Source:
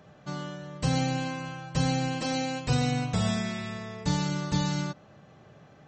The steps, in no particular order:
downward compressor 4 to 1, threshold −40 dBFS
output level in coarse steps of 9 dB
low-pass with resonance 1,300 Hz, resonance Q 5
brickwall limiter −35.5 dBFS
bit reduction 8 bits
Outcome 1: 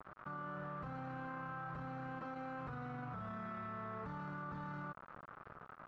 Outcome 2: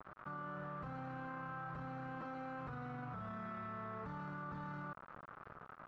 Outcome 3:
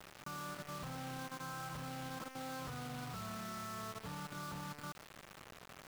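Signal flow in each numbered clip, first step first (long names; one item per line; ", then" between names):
brickwall limiter, then bit reduction, then low-pass with resonance, then downward compressor, then output level in coarse steps
brickwall limiter, then bit reduction, then low-pass with resonance, then output level in coarse steps, then downward compressor
low-pass with resonance, then brickwall limiter, then downward compressor, then output level in coarse steps, then bit reduction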